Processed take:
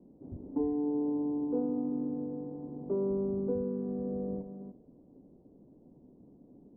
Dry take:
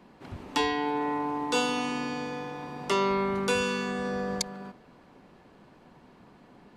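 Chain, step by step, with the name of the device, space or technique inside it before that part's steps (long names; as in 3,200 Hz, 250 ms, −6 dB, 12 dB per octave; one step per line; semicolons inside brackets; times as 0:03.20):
under water (low-pass filter 530 Hz 24 dB per octave; parametric band 280 Hz +6.5 dB 0.33 octaves)
level −3 dB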